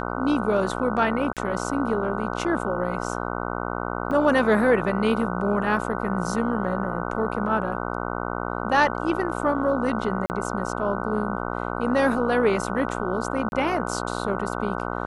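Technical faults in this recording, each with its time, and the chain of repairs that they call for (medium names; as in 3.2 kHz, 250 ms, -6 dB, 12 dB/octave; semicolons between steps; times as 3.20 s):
buzz 60 Hz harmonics 25 -29 dBFS
1.33–1.37 s: dropout 37 ms
4.11 s: dropout 2.9 ms
10.26–10.30 s: dropout 39 ms
13.49–13.52 s: dropout 31 ms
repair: de-hum 60 Hz, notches 25; interpolate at 1.33 s, 37 ms; interpolate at 4.11 s, 2.9 ms; interpolate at 10.26 s, 39 ms; interpolate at 13.49 s, 31 ms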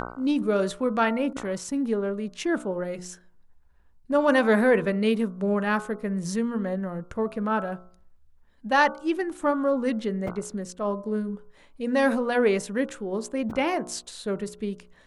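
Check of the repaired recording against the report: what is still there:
nothing left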